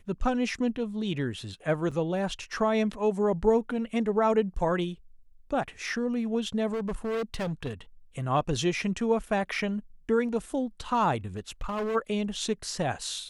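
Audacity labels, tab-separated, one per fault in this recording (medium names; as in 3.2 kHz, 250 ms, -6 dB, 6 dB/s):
1.910000	1.920000	dropout 5.6 ms
6.720000	7.730000	clipped -27.5 dBFS
11.370000	11.960000	clipped -27.5 dBFS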